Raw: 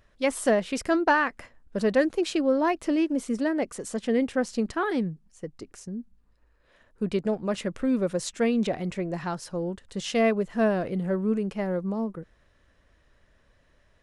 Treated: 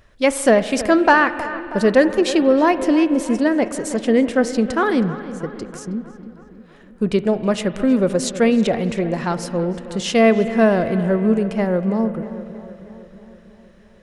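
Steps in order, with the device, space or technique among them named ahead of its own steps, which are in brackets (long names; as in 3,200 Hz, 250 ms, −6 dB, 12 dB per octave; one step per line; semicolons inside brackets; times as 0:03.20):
dub delay into a spring reverb (feedback echo with a low-pass in the loop 319 ms, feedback 63%, low-pass 3,100 Hz, level −14.5 dB; spring reverb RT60 3.1 s, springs 40 ms, chirp 55 ms, DRR 13 dB)
level +8.5 dB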